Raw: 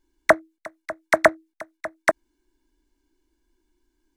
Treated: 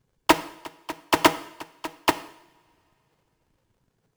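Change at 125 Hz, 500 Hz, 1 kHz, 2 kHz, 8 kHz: +4.5, −7.0, +1.5, −4.5, +5.0 decibels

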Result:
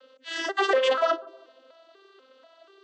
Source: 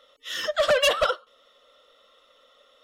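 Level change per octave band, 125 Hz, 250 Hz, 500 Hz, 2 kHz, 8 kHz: below −20 dB, +9.5 dB, −1.0 dB, −1.5 dB, can't be measured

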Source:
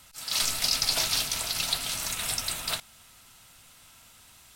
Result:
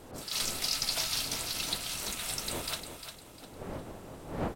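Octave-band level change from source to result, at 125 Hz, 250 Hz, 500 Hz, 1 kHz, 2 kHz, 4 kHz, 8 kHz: +2.0, +5.5, +3.0, −2.5, −5.0, −5.5, −5.5 decibels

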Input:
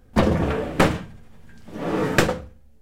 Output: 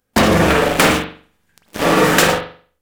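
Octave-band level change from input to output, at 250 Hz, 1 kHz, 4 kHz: +6.0, +10.0, +13.0 decibels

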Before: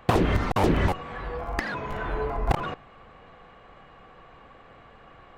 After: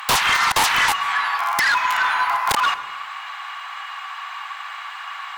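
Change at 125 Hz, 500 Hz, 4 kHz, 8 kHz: −14.5, −7.5, +18.5, +21.5 decibels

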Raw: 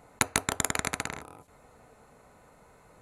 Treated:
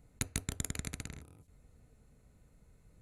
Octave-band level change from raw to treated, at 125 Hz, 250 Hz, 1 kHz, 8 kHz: −0.5, −6.5, −21.0, −9.5 decibels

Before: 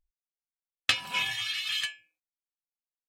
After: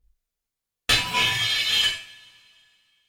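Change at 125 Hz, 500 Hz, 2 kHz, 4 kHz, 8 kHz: +16.0, +13.0, +7.0, +9.0, +9.5 decibels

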